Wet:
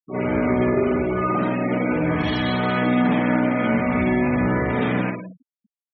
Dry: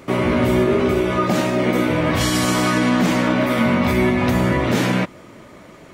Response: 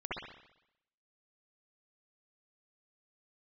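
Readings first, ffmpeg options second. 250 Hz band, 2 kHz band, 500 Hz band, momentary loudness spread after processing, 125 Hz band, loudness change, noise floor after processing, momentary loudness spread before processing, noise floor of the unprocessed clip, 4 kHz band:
-2.5 dB, -3.5 dB, -3.5 dB, 3 LU, -4.0 dB, -3.0 dB, under -85 dBFS, 2 LU, -43 dBFS, -8.5 dB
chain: -filter_complex "[0:a]bandreject=f=60:t=h:w=6,bandreject=f=120:t=h:w=6,bandreject=f=180:t=h:w=6,bandreject=f=240:t=h:w=6,bandreject=f=300:t=h:w=6,bandreject=f=360:t=h:w=6,bandreject=f=420:t=h:w=6,bandreject=f=480:t=h:w=6,bandreject=f=540:t=h:w=6,bandreject=f=600:t=h:w=6,asplit=2[a][b];[b]adelay=170,highpass=300,lowpass=3.4k,asoftclip=type=hard:threshold=-16dB,volume=-12dB[c];[a][c]amix=inputs=2:normalize=0[d];[1:a]atrim=start_sample=2205,afade=t=out:st=0.43:d=0.01,atrim=end_sample=19404,asetrate=52920,aresample=44100[e];[d][e]afir=irnorm=-1:irlink=0,afftfilt=real='re*gte(hypot(re,im),0.0891)':imag='im*gte(hypot(re,im),0.0891)':win_size=1024:overlap=0.75,volume=-5.5dB"

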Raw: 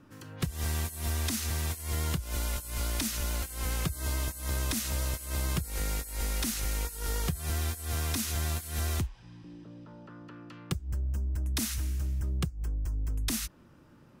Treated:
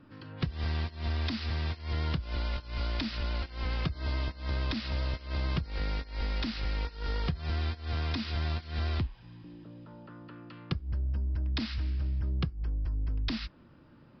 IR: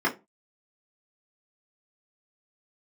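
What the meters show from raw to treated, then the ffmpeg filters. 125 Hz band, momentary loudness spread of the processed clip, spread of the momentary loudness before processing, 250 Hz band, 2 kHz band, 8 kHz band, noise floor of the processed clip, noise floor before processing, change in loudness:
+0.5 dB, 14 LU, 14 LU, +0.5 dB, -0.5 dB, under -25 dB, -56 dBFS, -57 dBFS, -1.0 dB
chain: -filter_complex "[0:a]asplit=2[a][b];[1:a]atrim=start_sample=2205[c];[b][c]afir=irnorm=-1:irlink=0,volume=-30dB[d];[a][d]amix=inputs=2:normalize=0,aresample=11025,aresample=44100"

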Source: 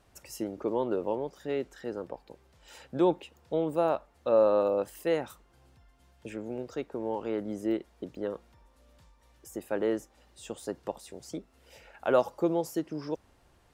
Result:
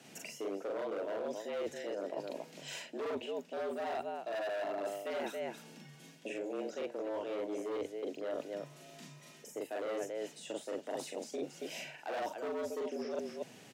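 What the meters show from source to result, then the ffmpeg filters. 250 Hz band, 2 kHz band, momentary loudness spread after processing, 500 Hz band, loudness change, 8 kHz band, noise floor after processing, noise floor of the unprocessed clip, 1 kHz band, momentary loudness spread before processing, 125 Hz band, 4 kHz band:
-10.5 dB, -0.5 dB, 8 LU, -7.5 dB, -8.5 dB, -0.5 dB, -56 dBFS, -64 dBFS, -6.0 dB, 16 LU, -14.0 dB, +1.0 dB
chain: -filter_complex "[0:a]acrossover=split=2800[a][b];[b]acompressor=threshold=-55dB:ratio=4:attack=1:release=60[c];[a][c]amix=inputs=2:normalize=0,equalizer=f=160:t=o:w=0.67:g=6,equalizer=f=1k:t=o:w=0.67:g=-10,equalizer=f=2.5k:t=o:w=0.67:g=6,equalizer=f=6.3k:t=o:w=0.67:g=6,asplit=2[d][e];[e]aecho=0:1:40.82|277:0.891|0.282[f];[d][f]amix=inputs=2:normalize=0,volume=27dB,asoftclip=hard,volume=-27dB,lowshelf=f=130:g=-9,afreqshift=97,areverse,acompressor=threshold=-44dB:ratio=6,areverse,volume=7.5dB"

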